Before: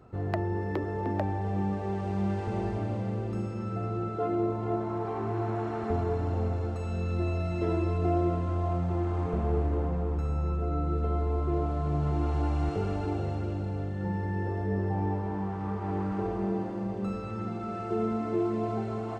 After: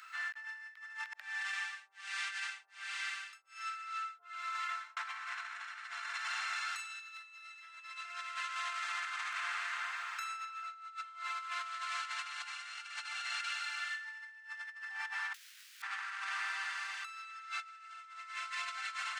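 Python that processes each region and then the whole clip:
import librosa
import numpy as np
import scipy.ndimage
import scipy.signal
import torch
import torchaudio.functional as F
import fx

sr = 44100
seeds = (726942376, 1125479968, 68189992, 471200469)

y = fx.chain(x, sr, fx.highpass(hz=980.0, slope=6),
    fx.harmonic_tremolo(hz=1.3, depth_pct=100, crossover_hz=440.0), at=(1.13, 4.97))
y = fx.chain(y, sr, fx.highpass(hz=120.0, slope=24),
    fx.overflow_wrap(gain_db=40.0), at=(15.34, 15.82))
y = scipy.signal.sosfilt(scipy.signal.butter(6, 1500.0, 'highpass', fs=sr, output='sos'), y)
y = fx.over_compress(y, sr, threshold_db=-56.0, ratio=-0.5)
y = y * 10.0 ** (14.5 / 20.0)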